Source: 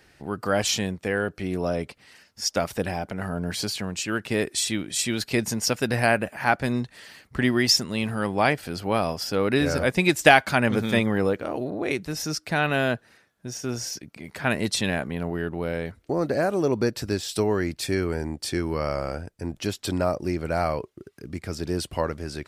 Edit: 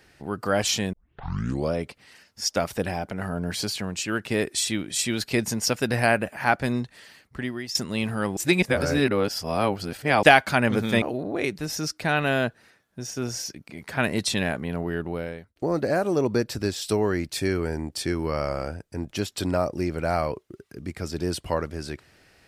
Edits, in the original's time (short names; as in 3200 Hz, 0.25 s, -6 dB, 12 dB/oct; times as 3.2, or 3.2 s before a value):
0.93 tape start 0.82 s
6.69–7.75 fade out, to -17 dB
8.37–10.23 reverse
11.02–11.49 cut
15.55–16.03 fade out